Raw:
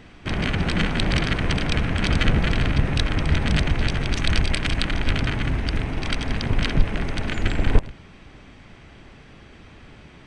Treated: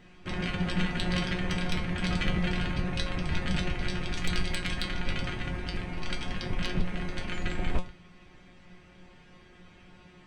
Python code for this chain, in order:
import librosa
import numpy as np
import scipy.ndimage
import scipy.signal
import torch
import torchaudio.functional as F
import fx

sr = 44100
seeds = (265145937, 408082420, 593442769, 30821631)

y = fx.comb_fb(x, sr, f0_hz=180.0, decay_s=0.24, harmonics='all', damping=0.0, mix_pct=90)
y = 10.0 ** (-19.0 / 20.0) * (np.abs((y / 10.0 ** (-19.0 / 20.0) + 3.0) % 4.0 - 2.0) - 1.0)
y = y * librosa.db_to_amplitude(2.5)